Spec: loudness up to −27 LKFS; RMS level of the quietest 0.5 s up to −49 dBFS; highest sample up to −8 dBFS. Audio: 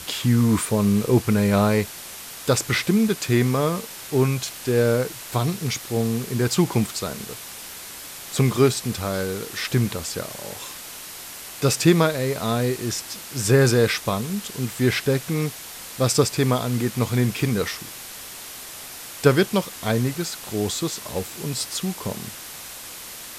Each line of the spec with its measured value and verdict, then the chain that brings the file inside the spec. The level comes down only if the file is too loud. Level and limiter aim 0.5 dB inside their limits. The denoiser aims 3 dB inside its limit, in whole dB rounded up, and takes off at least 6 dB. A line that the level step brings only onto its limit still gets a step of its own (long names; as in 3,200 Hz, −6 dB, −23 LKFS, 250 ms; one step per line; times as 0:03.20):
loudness −22.5 LKFS: out of spec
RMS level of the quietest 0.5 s −38 dBFS: out of spec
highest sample −3.5 dBFS: out of spec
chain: broadband denoise 9 dB, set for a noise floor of −38 dBFS
level −5 dB